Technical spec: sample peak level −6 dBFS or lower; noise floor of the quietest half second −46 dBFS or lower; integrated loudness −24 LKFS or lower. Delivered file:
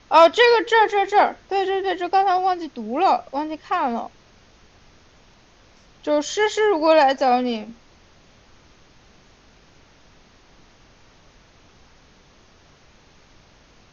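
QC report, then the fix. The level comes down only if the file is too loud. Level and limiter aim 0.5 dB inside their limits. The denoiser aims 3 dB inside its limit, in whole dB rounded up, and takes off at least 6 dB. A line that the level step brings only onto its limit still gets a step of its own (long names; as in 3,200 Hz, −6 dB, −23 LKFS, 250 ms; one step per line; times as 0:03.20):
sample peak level −4.0 dBFS: out of spec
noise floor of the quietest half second −53 dBFS: in spec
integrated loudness −19.0 LKFS: out of spec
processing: level −5.5 dB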